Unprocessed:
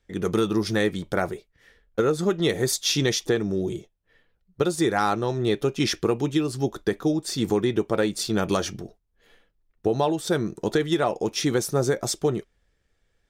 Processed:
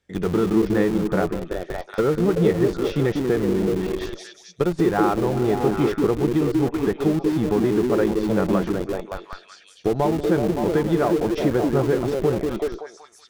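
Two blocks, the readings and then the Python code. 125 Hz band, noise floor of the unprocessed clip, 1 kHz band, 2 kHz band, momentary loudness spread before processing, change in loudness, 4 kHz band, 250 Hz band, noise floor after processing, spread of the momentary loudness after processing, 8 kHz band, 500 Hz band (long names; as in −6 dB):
+4.0 dB, −72 dBFS, +2.0 dB, −1.0 dB, 5 LU, +3.0 dB, −8.5 dB, +5.0 dB, −50 dBFS, 10 LU, −11.0 dB, +4.0 dB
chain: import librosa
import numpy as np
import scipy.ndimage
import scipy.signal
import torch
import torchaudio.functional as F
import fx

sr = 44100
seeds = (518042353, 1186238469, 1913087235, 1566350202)

p1 = scipy.signal.sosfilt(scipy.signal.butter(2, 75.0, 'highpass', fs=sr, output='sos'), x)
p2 = fx.peak_eq(p1, sr, hz=170.0, db=6.0, octaves=0.2)
p3 = fx.echo_stepped(p2, sr, ms=189, hz=270.0, octaves=0.7, feedback_pct=70, wet_db=0.0)
p4 = fx.env_lowpass_down(p3, sr, base_hz=1600.0, full_db=-19.0)
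p5 = fx.schmitt(p4, sr, flips_db=-25.5)
y = p4 + (p5 * 10.0 ** (-9.0 / 20.0))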